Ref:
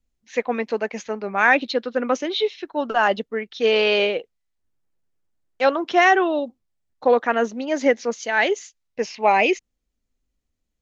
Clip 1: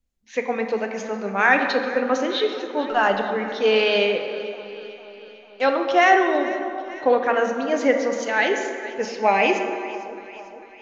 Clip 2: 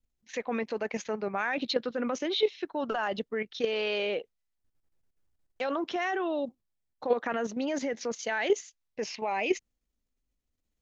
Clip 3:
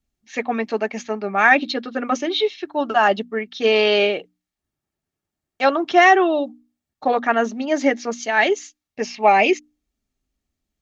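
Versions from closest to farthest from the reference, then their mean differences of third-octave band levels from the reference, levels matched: 3, 2, 1; 1.0, 3.5, 6.0 decibels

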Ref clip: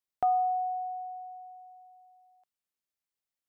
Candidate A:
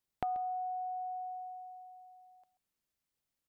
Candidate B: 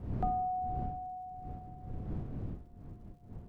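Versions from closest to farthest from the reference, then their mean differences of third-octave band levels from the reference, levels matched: A, B; 1.5, 12.0 decibels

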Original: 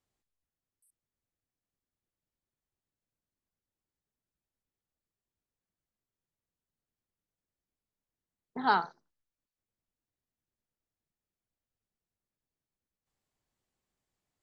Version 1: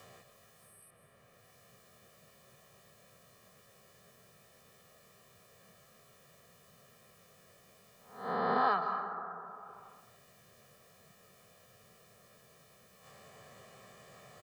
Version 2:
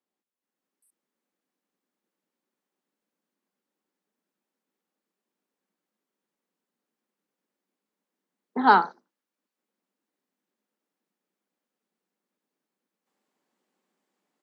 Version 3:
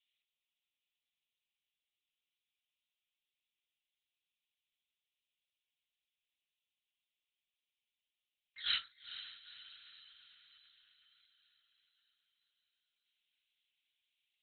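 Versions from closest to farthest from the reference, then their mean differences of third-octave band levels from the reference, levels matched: 2, 1, 3; 2.0, 6.5, 13.5 decibels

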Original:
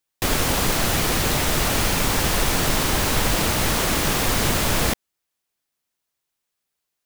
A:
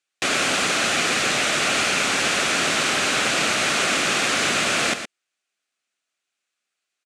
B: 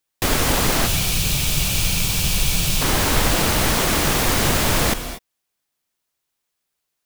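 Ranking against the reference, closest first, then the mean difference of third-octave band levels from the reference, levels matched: B, A; 2.5, 6.5 decibels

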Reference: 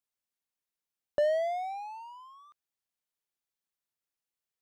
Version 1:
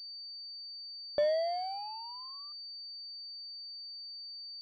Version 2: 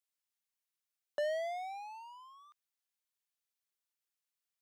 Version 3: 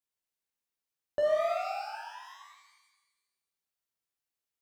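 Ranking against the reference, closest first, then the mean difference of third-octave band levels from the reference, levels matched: 2, 1, 3; 2.0, 3.5, 8.5 decibels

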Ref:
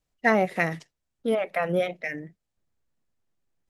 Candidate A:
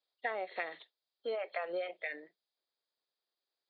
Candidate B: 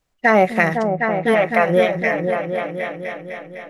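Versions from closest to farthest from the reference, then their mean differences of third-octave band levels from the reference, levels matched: B, A; 5.5, 8.0 decibels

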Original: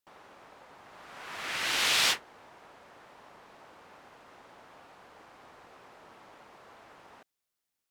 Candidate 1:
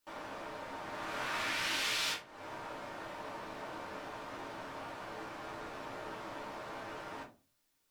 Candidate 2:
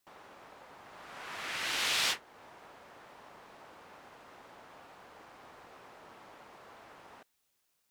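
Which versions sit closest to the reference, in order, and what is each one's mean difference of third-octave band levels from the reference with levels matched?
2, 1; 4.0, 11.5 decibels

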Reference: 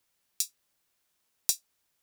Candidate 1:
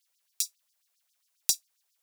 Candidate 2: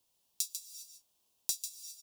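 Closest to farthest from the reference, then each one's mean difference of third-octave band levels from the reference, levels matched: 1, 2; 1.0, 2.5 decibels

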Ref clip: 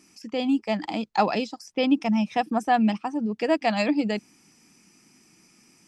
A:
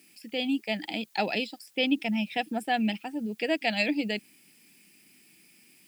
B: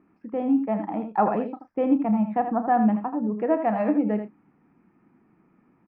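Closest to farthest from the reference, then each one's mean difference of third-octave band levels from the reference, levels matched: A, B; 5.0, 7.0 decibels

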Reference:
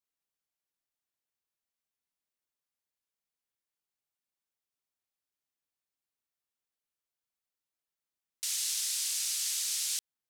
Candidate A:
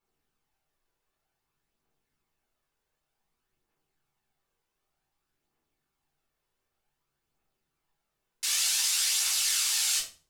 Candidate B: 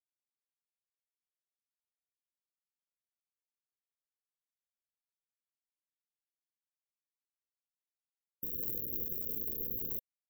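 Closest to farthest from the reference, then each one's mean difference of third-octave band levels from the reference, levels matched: A, B; 4.0, 31.5 decibels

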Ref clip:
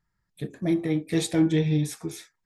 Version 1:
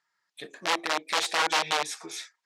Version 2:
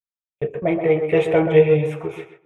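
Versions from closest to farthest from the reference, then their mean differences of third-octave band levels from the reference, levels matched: 2, 1; 7.5, 12.5 decibels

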